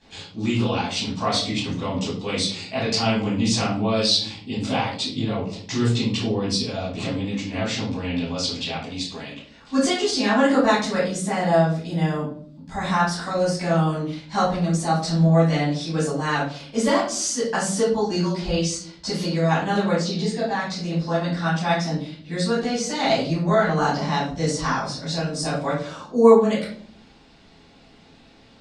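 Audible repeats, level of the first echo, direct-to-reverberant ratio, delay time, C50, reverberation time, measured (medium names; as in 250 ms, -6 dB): no echo, no echo, -11.5 dB, no echo, 3.5 dB, 0.55 s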